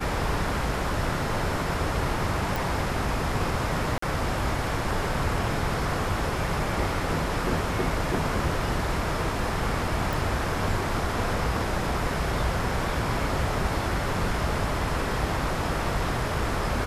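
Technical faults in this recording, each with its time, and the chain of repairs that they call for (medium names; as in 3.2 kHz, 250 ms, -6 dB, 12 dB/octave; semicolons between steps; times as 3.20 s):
2.56 s: pop
3.98–4.02 s: dropout 44 ms
10.13 s: pop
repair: de-click; interpolate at 3.98 s, 44 ms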